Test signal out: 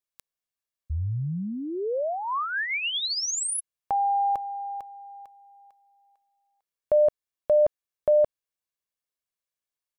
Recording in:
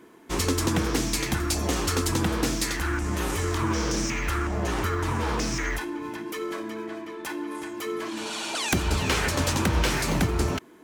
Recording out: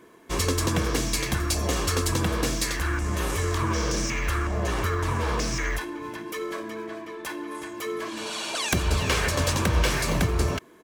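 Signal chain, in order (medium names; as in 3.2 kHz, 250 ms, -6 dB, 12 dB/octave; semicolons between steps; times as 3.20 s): comb 1.8 ms, depth 33%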